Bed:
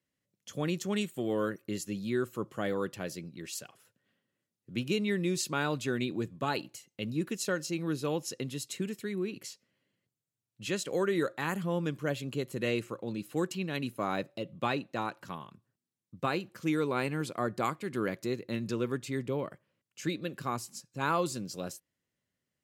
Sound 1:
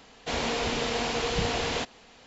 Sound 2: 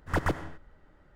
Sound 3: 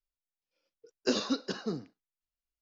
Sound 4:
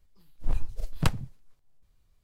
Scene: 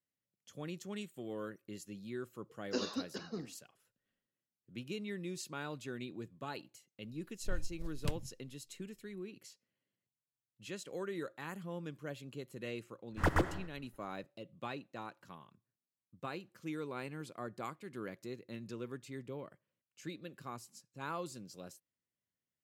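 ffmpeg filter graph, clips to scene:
-filter_complex "[0:a]volume=-11.5dB[a];[4:a]equalizer=f=1.2k:w=1.8:g=-12.5[b];[2:a]agate=range=-33dB:threshold=-51dB:ratio=3:release=100:detection=peak[c];[3:a]atrim=end=2.61,asetpts=PTS-STARTPTS,volume=-8dB,afade=t=in:d=0.004:c=hsin,afade=t=out:st=2.606:d=0.004:c=hsin,adelay=1660[d];[b]atrim=end=2.23,asetpts=PTS-STARTPTS,volume=-11.5dB,afade=t=in:d=0.004:c=hsin,afade=t=out:st=2.226:d=0.004:c=hsin,adelay=7020[e];[c]atrim=end=1.15,asetpts=PTS-STARTPTS,volume=-2.5dB,afade=t=in:d=0.004:c=hsin,afade=t=out:st=1.146:d=0.004:c=hsin,adelay=13100[f];[a][d][e][f]amix=inputs=4:normalize=0"

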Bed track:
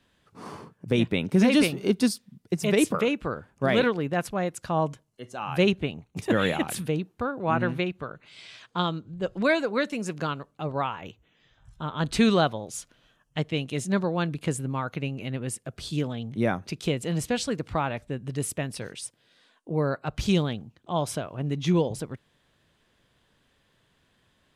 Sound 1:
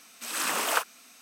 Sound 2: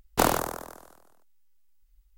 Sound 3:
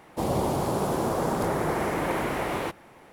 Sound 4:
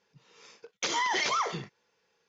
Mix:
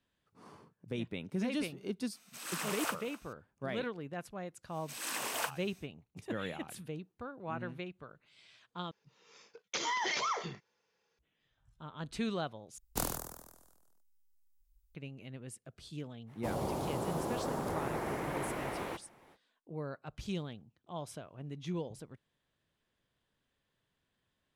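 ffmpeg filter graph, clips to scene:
-filter_complex "[1:a]asplit=2[a][b];[0:a]volume=-15dB[c];[a]aecho=1:1:251:0.119[d];[b]equalizer=f=1.3k:t=o:w=0.24:g=-7.5[e];[2:a]bass=f=250:g=9,treble=f=4k:g=11[f];[c]asplit=3[g][h][i];[g]atrim=end=8.914[j];[4:a]atrim=end=2.28,asetpts=PTS-STARTPTS,volume=-5.5dB[k];[h]atrim=start=11.186:end=12.784[l];[f]atrim=end=2.17,asetpts=PTS-STARTPTS,volume=-17dB[m];[i]atrim=start=14.946[n];[d]atrim=end=1.21,asetpts=PTS-STARTPTS,volume=-10.5dB,afade=t=in:d=0.004:c=hsin,afade=t=out:st=1.206:d=0.004:c=hsin,adelay=2120[o];[e]atrim=end=1.21,asetpts=PTS-STARTPTS,volume=-8.5dB,afade=t=in:d=0.1,afade=t=out:st=1.11:d=0.1,adelay=4670[p];[3:a]atrim=end=3.12,asetpts=PTS-STARTPTS,volume=-10dB,afade=t=in:d=0.05,afade=t=out:st=3.07:d=0.05,adelay=16260[q];[j][k]acrossfade=d=0.004:c1=hsin:c2=hsin[r];[r][l]acrossfade=d=0.004:c1=hsin:c2=hsin[s];[s][m]acrossfade=d=0.004:c1=hsin:c2=hsin[t];[t][n]acrossfade=d=0.004:c1=hsin:c2=hsin[u];[u][o][p][q]amix=inputs=4:normalize=0"

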